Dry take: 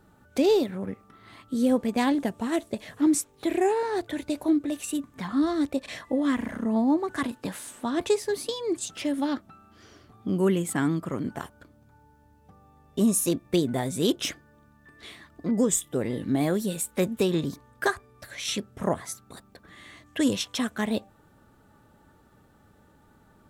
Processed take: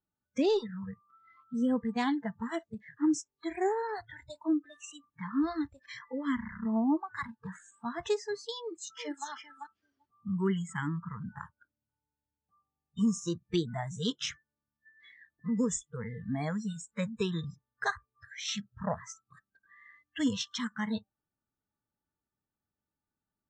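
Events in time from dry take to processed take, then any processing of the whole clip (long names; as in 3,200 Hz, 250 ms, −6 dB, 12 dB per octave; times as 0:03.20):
0:08.59–0:09.27: delay throw 390 ms, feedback 15%, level −4 dB
whole clip: Butterworth low-pass 7,100 Hz 48 dB per octave; noise reduction from a noise print of the clip's start 29 dB; parametric band 510 Hz −4.5 dB 0.42 octaves; level −4.5 dB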